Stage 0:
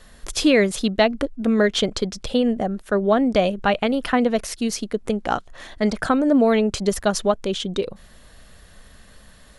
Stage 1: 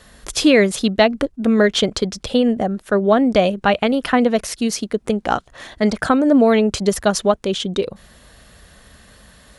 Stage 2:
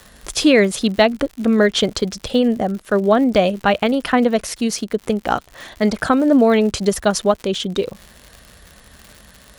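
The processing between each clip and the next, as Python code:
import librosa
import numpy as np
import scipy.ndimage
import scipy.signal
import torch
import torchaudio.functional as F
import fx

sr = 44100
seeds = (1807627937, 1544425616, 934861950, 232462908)

y1 = scipy.signal.sosfilt(scipy.signal.butter(2, 42.0, 'highpass', fs=sr, output='sos'), x)
y1 = y1 * librosa.db_to_amplitude(3.5)
y2 = fx.dmg_crackle(y1, sr, seeds[0], per_s=130.0, level_db=-29.0)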